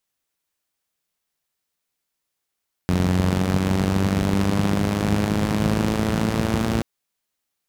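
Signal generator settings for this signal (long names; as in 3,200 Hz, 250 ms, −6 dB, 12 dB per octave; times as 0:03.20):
pulse-train model of a four-cylinder engine, changing speed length 3.93 s, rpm 2,700, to 3,400, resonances 82/160 Hz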